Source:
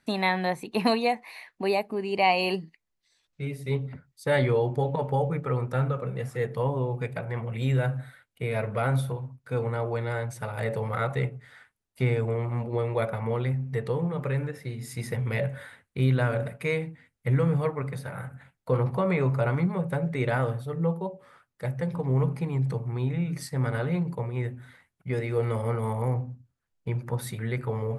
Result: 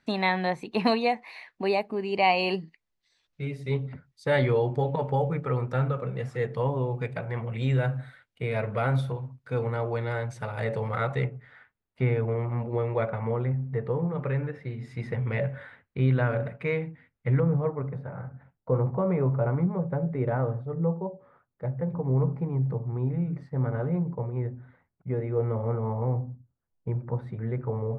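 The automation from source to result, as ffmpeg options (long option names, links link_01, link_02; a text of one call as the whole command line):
ffmpeg -i in.wav -af "asetnsamples=nb_out_samples=441:pad=0,asendcmd='11.24 lowpass f 2400;13.31 lowpass f 1500;14.15 lowpass f 2500;17.4 lowpass f 1000',lowpass=5700" out.wav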